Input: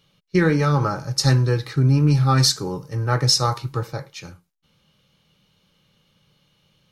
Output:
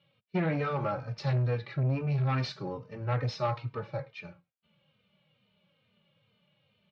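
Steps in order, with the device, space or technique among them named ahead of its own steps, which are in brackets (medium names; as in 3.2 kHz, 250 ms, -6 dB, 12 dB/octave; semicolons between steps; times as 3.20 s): barber-pole flanger into a guitar amplifier (endless flanger 3.1 ms -2.3 Hz; saturation -18.5 dBFS, distortion -12 dB; cabinet simulation 100–3600 Hz, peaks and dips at 110 Hz +4 dB, 210 Hz +5 dB, 310 Hz -5 dB, 600 Hz +9 dB, 2.4 kHz +6 dB); trim -6 dB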